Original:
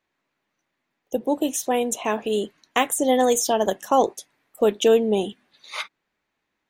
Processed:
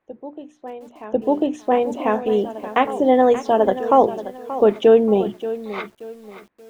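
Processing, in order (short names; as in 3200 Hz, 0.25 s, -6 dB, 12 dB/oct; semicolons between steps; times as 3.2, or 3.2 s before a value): LPF 1700 Hz 12 dB/oct; notches 60/120/180/240/300/360 Hz; dynamic EQ 120 Hz, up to +8 dB, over -52 dBFS, Q 4; on a send: reverse echo 1.045 s -16 dB; on the sum: lo-fi delay 0.58 s, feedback 35%, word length 8-bit, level -13.5 dB; gain +4.5 dB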